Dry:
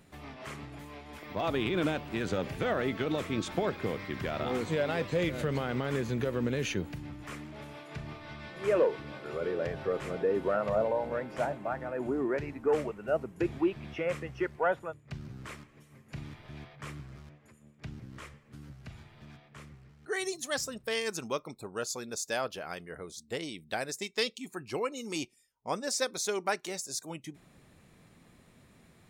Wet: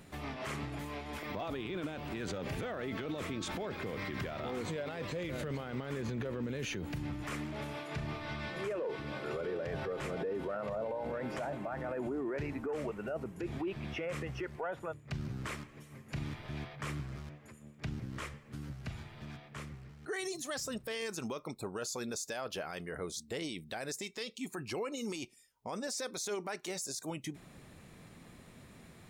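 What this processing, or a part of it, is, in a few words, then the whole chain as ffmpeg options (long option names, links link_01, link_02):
stacked limiters: -filter_complex "[0:a]asettb=1/sr,asplit=3[link_01][link_02][link_03];[link_01]atrim=end=6.024[link_04];[link_02]atrim=start=6.02:end=6.43,asetpts=PTS-STARTPTS,afade=type=in:duration=0.004:curve=qsin,afade=type=out:start_time=0.406:duration=0.004:curve=qsin,highshelf=frequency=7300:gain=-10[link_05];[link_03]atrim=start=6.426[link_06];[link_04][link_05]acrossfade=duration=0.004:curve1=hsin:curve2=qsin[link_07];[link_07][link_06]acrossfade=duration=0.004:curve1=qsin:curve2=hsin,alimiter=limit=-22dB:level=0:latency=1:release=445,alimiter=level_in=4dB:limit=-24dB:level=0:latency=1:release=85,volume=-4dB,alimiter=level_in=10.5dB:limit=-24dB:level=0:latency=1:release=20,volume=-10.5dB,volume=4.5dB"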